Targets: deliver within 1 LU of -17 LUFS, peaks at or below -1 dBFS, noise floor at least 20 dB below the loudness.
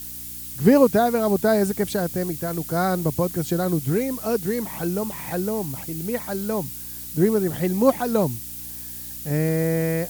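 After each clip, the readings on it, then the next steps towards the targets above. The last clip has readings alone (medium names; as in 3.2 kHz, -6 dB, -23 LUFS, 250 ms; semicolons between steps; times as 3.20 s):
hum 60 Hz; highest harmonic 300 Hz; hum level -45 dBFS; noise floor -35 dBFS; noise floor target -43 dBFS; loudness -23.0 LUFS; peak level -4.0 dBFS; loudness target -17.0 LUFS
-> de-hum 60 Hz, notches 5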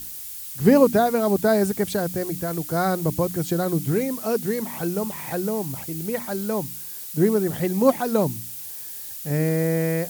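hum not found; noise floor -36 dBFS; noise floor target -44 dBFS
-> noise reduction 8 dB, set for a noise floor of -36 dBFS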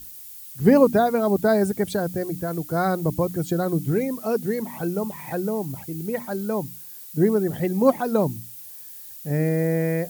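noise floor -41 dBFS; noise floor target -43 dBFS
-> noise reduction 6 dB, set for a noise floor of -41 dBFS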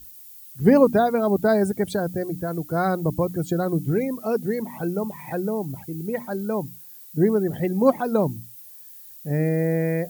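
noise floor -44 dBFS; loudness -23.5 LUFS; peak level -5.0 dBFS; loudness target -17.0 LUFS
-> trim +6.5 dB; peak limiter -1 dBFS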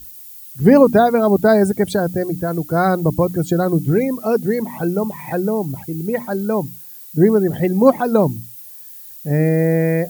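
loudness -17.0 LUFS; peak level -1.0 dBFS; noise floor -38 dBFS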